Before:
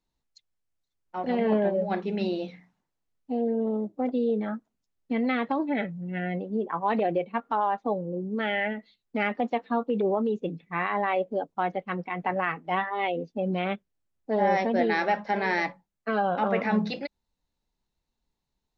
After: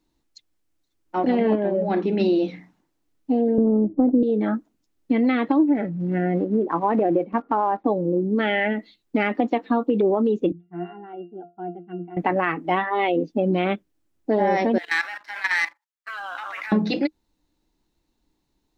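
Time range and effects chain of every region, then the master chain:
1.55–2.20 s: treble shelf 5 kHz -5 dB + compression 2:1, threshold -29 dBFS
3.58–4.23 s: low-pass 1.5 kHz 24 dB/octave + tilt EQ -3.5 dB/octave
5.63–7.86 s: block-companded coder 5-bit + low-pass 1.4 kHz
10.52–12.17 s: low-pass 2.9 kHz 6 dB/octave + bass shelf 190 Hz -9 dB + pitch-class resonator F, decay 0.24 s
14.78–16.72 s: high-pass 1.2 kHz 24 dB/octave + level held to a coarse grid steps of 15 dB + waveshaping leveller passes 1
whole clip: peaking EQ 310 Hz +14.5 dB 0.39 oct; compression 3:1, threshold -26 dBFS; trim +8 dB

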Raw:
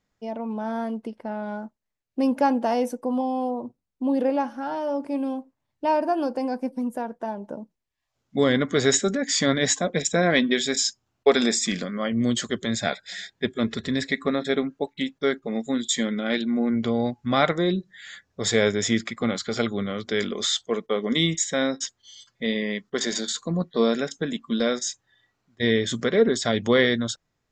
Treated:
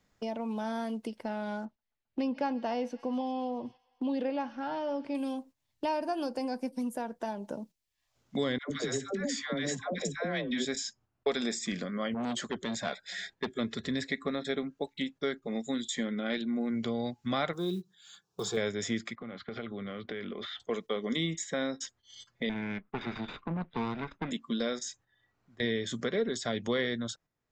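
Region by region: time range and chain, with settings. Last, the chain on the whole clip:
1.65–5.15 s: distance through air 220 m + feedback echo behind a high-pass 133 ms, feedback 69%, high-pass 1.7 kHz, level -19 dB
8.58–10.65 s: compression 4:1, threshold -21 dBFS + phase dispersion lows, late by 120 ms, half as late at 650 Hz
12.14–13.56 s: peaking EQ 100 Hz -6 dB 1.2 oct + transformer saturation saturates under 1.4 kHz
17.53–18.57 s: high-pass 83 Hz 6 dB/octave + static phaser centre 390 Hz, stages 8 + short-mantissa float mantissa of 4-bit
19.15–20.60 s: low-pass 3 kHz 24 dB/octave + gate -43 dBFS, range -7 dB + compression 4:1, threshold -37 dBFS
22.49–24.31 s: comb filter that takes the minimum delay 0.82 ms + low-pass 2.4 kHz 24 dB/octave + valve stage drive 18 dB, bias 0.4
whole clip: gate -46 dBFS, range -8 dB; three bands compressed up and down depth 70%; trim -8.5 dB

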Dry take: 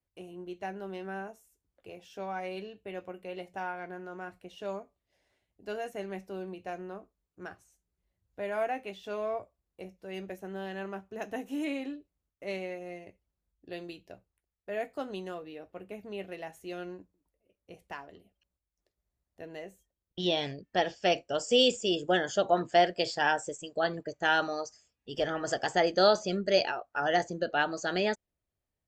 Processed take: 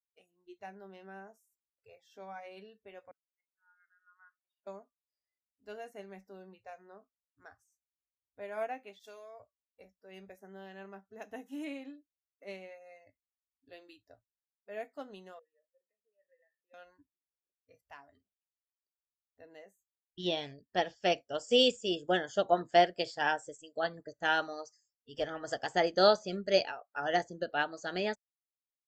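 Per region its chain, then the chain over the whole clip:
3.11–4.67 s: slow attack 541 ms + ladder band-pass 1.5 kHz, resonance 50%
8.99–9.40 s: tone controls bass -10 dB, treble +14 dB + compression 12:1, threshold -36 dBFS + expander -43 dBFS
15.39–16.74 s: compression 4:1, threshold -46 dBFS + vowel filter e
whole clip: spectral noise reduction 23 dB; upward expansion 1.5:1, over -38 dBFS

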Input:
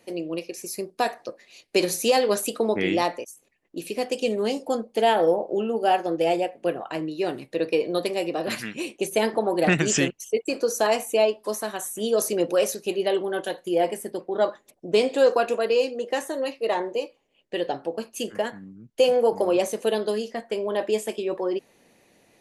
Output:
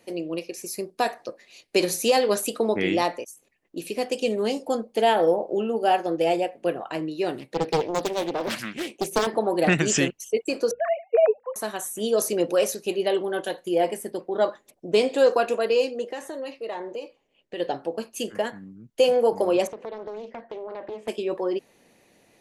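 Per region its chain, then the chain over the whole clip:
7.39–9.27 s: high-pass 83 Hz + loudspeaker Doppler distortion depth 0.65 ms
10.71–11.56 s: formants replaced by sine waves + steep low-pass 2.3 kHz + hum notches 60/120/180/240 Hz
16.11–17.60 s: compression 2.5:1, threshold -32 dBFS + treble shelf 9.2 kHz -9 dB
19.67–21.08 s: low-pass 2 kHz + compression 5:1, threshold -32 dBFS + loudspeaker Doppler distortion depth 0.46 ms
whole clip: none

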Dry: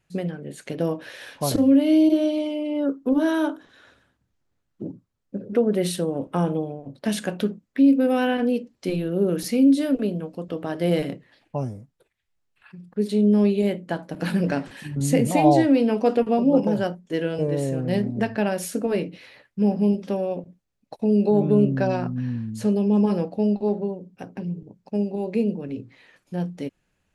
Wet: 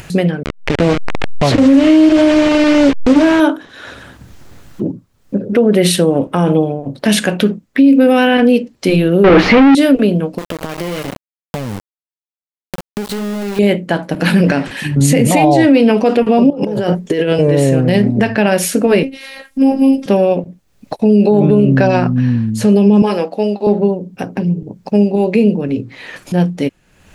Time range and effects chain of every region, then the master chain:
0.43–3.40 s: send-on-delta sampling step -27 dBFS + upward compressor, threshold -18 dBFS + distance through air 110 m
9.24–9.75 s: companding laws mixed up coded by A + overdrive pedal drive 39 dB, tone 1.6 kHz, clips at -9.5 dBFS + distance through air 240 m
10.38–13.59 s: compression, threshold -33 dBFS + small samples zeroed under -36.5 dBFS
16.50–17.33 s: compressor with a negative ratio -32 dBFS + peaking EQ 430 Hz +8.5 dB 0.27 oct + band-stop 1.5 kHz, Q 22
19.03–20.06 s: peaking EQ 9.9 kHz +8.5 dB 0.81 oct + robot voice 269 Hz
23.02–23.67 s: Bessel high-pass 340 Hz + bass shelf 430 Hz -5.5 dB
whole clip: dynamic bell 2.4 kHz, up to +5 dB, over -46 dBFS, Q 1.2; upward compressor, threshold -31 dBFS; loudness maximiser +15 dB; trim -1 dB

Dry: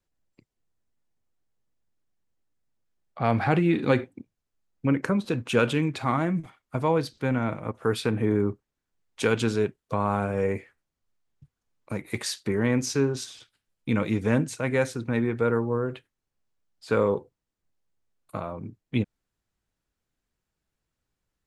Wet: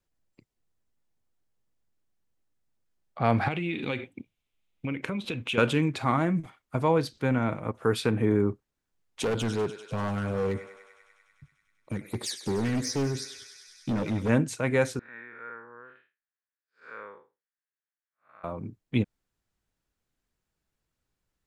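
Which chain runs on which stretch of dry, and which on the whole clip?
3.48–5.58 s: high-order bell 2.8 kHz +11 dB 1 oct + compression 3:1, threshold -30 dBFS
9.23–14.29 s: phase shifter stages 12, 2.8 Hz, lowest notch 760–2900 Hz + thinning echo 98 ms, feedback 83%, high-pass 620 Hz, level -12 dB + hard clipper -24 dBFS
14.99–18.44 s: spectral blur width 159 ms + band-pass filter 1.7 kHz, Q 3.8
whole clip: none

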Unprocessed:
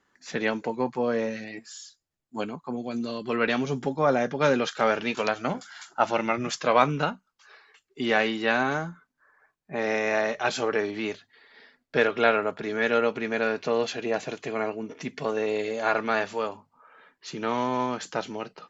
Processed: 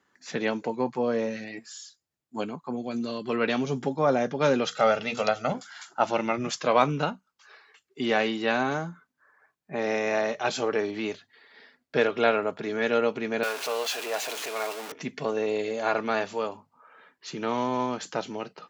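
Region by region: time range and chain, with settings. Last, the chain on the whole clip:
4.65–5.52 s: hum notches 60/120/180/240/300/360/420/480 Hz + comb 1.5 ms, depth 64%
13.43–14.92 s: jump at every zero crossing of -27.5 dBFS + high-pass 690 Hz
whole clip: dynamic bell 1.7 kHz, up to -4 dB, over -39 dBFS, Q 1.3; high-pass 77 Hz

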